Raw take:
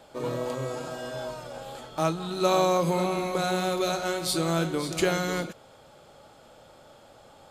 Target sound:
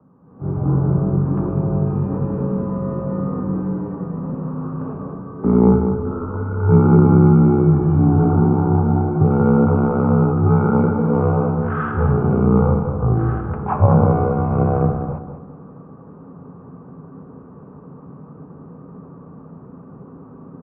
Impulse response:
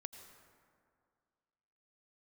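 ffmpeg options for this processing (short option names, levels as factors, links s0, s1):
-filter_complex "[0:a]highpass=f=360:t=q:w=0.5412,highpass=f=360:t=q:w=1.307,lowpass=f=3400:t=q:w=0.5176,lowpass=f=3400:t=q:w=0.7071,lowpass=f=3400:t=q:w=1.932,afreqshift=-110,asetrate=16052,aresample=44100,aexciter=amount=8.4:drive=1.5:freq=2600,asplit=2[s0][s1];[s1]adelay=197,lowpass=f=2500:p=1,volume=0.447,asplit=2[s2][s3];[s3]adelay=197,lowpass=f=2500:p=1,volume=0.29,asplit=2[s4][s5];[s5]adelay=197,lowpass=f=2500:p=1,volume=0.29,asplit=2[s6][s7];[s7]adelay=197,lowpass=f=2500:p=1,volume=0.29[s8];[s2][s4][s6][s8]amix=inputs=4:normalize=0[s9];[s0][s9]amix=inputs=2:normalize=0,dynaudnorm=f=110:g=7:m=5.01"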